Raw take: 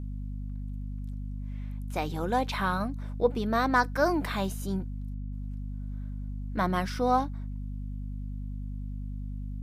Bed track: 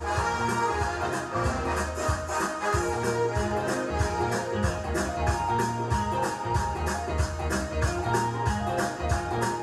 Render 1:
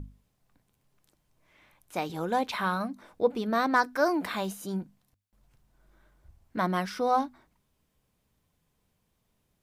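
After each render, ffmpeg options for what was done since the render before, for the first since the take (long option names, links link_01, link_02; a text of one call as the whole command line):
ffmpeg -i in.wav -af "bandreject=frequency=50:width_type=h:width=6,bandreject=frequency=100:width_type=h:width=6,bandreject=frequency=150:width_type=h:width=6,bandreject=frequency=200:width_type=h:width=6,bandreject=frequency=250:width_type=h:width=6" out.wav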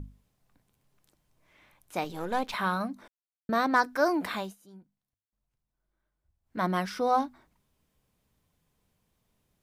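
ffmpeg -i in.wav -filter_complex "[0:a]asettb=1/sr,asplit=3[link_01][link_02][link_03];[link_01]atrim=end=2.044[link_04];[link_02]atrim=start=2.04:end=2.54,asetpts=PTS-STARTPTS,afade=type=in:duration=0.004:curve=qsin,afade=type=out:start_time=0.496:duration=0.004:curve=qsin,aeval=exprs='if(lt(val(0),0),0.447*val(0),val(0))':channel_layout=same[link_05];[link_03]atrim=start=2.536[link_06];[link_04][link_05]acrossfade=duration=0.004:curve1=hsin:curve2=qsin[link_07];[link_07][link_06]acrossfade=duration=0.004:curve1=qsin:curve2=hsin,asplit=5[link_08][link_09][link_10][link_11][link_12];[link_08]atrim=end=3.08,asetpts=PTS-STARTPTS,afade=type=out:start_time=3.076:duration=0.004:curve=hsin[link_13];[link_09]atrim=start=3.08:end=3.49,asetpts=PTS-STARTPTS,volume=0[link_14];[link_10]atrim=start=3.49:end=4.56,asetpts=PTS-STARTPTS,afade=type=in:duration=0.004:curve=hsin,afade=type=out:start_time=0.85:duration=0.22:silence=0.11885[link_15];[link_11]atrim=start=4.56:end=6.43,asetpts=PTS-STARTPTS,volume=-18.5dB[link_16];[link_12]atrim=start=6.43,asetpts=PTS-STARTPTS,afade=type=in:duration=0.22:silence=0.11885[link_17];[link_13][link_14][link_15][link_16][link_17]concat=n=5:v=0:a=1" out.wav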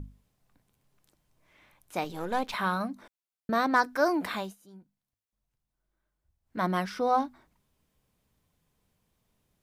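ffmpeg -i in.wav -filter_complex "[0:a]asettb=1/sr,asplit=3[link_01][link_02][link_03];[link_01]atrim=end=6.844[link_04];[link_02]atrim=start=6.84:end=7.25,asetpts=PTS-STARTPTS,afade=type=in:duration=0.004:curve=qsin,afade=type=out:start_time=0.406:duration=0.004:curve=qsin,highshelf=frequency=5400:gain=-5[link_05];[link_03]atrim=start=7.246[link_06];[link_04][link_05]acrossfade=duration=0.004:curve1=hsin:curve2=qsin[link_07];[link_07][link_06]acrossfade=duration=0.004:curve1=qsin:curve2=hsin" out.wav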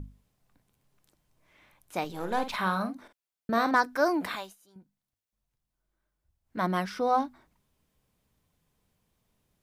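ffmpeg -i in.wav -filter_complex "[0:a]asettb=1/sr,asplit=3[link_01][link_02][link_03];[link_01]atrim=end=2.154[link_04];[link_02]atrim=start=2.15:end=3.75,asetpts=PTS-STARTPTS,afade=type=in:duration=0.004:curve=qsin,afade=type=out:start_time=1.596:duration=0.004:curve=qsin,asplit=2[link_05][link_06];[link_06]adelay=48,volume=-9dB[link_07];[link_05][link_07]amix=inputs=2:normalize=0,atrim=end_sample=70560[link_08];[link_03]atrim=start=3.746[link_09];[link_04][link_08]acrossfade=duration=0.004:curve1=hsin:curve2=qsin[link_10];[link_10][link_09]acrossfade=duration=0.004:curve1=qsin:curve2=hsin,asettb=1/sr,asplit=3[link_11][link_12][link_13];[link_11]atrim=end=4.354[link_14];[link_12]atrim=start=4.35:end=4.76,asetpts=PTS-STARTPTS,afade=type=in:duration=0.004:curve=qsin,afade=type=out:start_time=0.406:duration=0.004:curve=qsin,equalizer=frequency=180:width_type=o:width=2.6:gain=-13.5[link_15];[link_13]atrim=start=4.756[link_16];[link_14][link_15]acrossfade=duration=0.004:curve1=hsin:curve2=qsin[link_17];[link_17][link_16]acrossfade=duration=0.004:curve1=qsin:curve2=hsin" out.wav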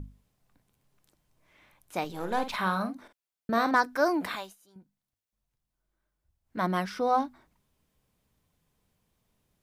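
ffmpeg -i in.wav -af anull out.wav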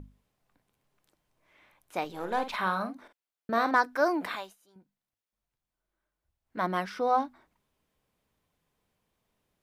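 ffmpeg -i in.wav -af "bass=frequency=250:gain=-7,treble=frequency=4000:gain=-5" out.wav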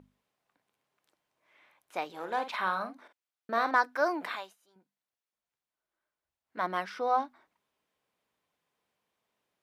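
ffmpeg -i in.wav -af "highpass=frequency=540:poles=1,highshelf=frequency=6400:gain=-7" out.wav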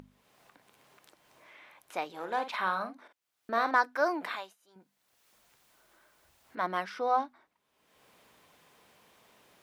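ffmpeg -i in.wav -af "acompressor=mode=upward:threshold=-45dB:ratio=2.5" out.wav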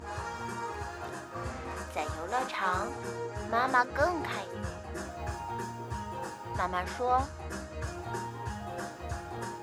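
ffmpeg -i in.wav -i bed.wav -filter_complex "[1:a]volume=-11dB[link_01];[0:a][link_01]amix=inputs=2:normalize=0" out.wav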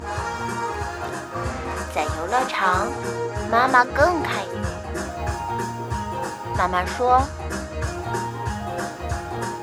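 ffmpeg -i in.wav -af "volume=10.5dB,alimiter=limit=-3dB:level=0:latency=1" out.wav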